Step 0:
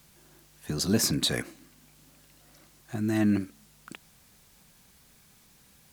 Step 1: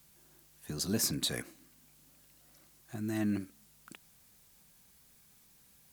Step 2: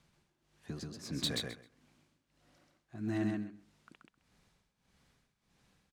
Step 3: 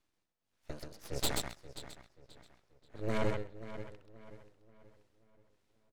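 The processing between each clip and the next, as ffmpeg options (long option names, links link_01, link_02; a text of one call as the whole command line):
ffmpeg -i in.wav -af "highshelf=frequency=8100:gain=8,volume=-8dB" out.wav
ffmpeg -i in.wav -af "tremolo=f=1.6:d=0.92,adynamicsmooth=sensitivity=4:basefreq=4200,aecho=1:1:131|262|393:0.708|0.113|0.0181" out.wav
ffmpeg -i in.wav -filter_complex "[0:a]asplit=2[link_01][link_02];[link_02]adelay=532,lowpass=frequency=3400:poles=1,volume=-8dB,asplit=2[link_03][link_04];[link_04]adelay=532,lowpass=frequency=3400:poles=1,volume=0.54,asplit=2[link_05][link_06];[link_06]adelay=532,lowpass=frequency=3400:poles=1,volume=0.54,asplit=2[link_07][link_08];[link_08]adelay=532,lowpass=frequency=3400:poles=1,volume=0.54,asplit=2[link_09][link_10];[link_10]adelay=532,lowpass=frequency=3400:poles=1,volume=0.54,asplit=2[link_11][link_12];[link_12]adelay=532,lowpass=frequency=3400:poles=1,volume=0.54[link_13];[link_01][link_03][link_05][link_07][link_09][link_11][link_13]amix=inputs=7:normalize=0,aeval=exprs='abs(val(0))':channel_layout=same,aeval=exprs='0.106*(cos(1*acos(clip(val(0)/0.106,-1,1)))-cos(1*PI/2))+0.0335*(cos(6*acos(clip(val(0)/0.106,-1,1)))-cos(6*PI/2))+0.00841*(cos(7*acos(clip(val(0)/0.106,-1,1)))-cos(7*PI/2))':channel_layout=same,volume=-2.5dB" out.wav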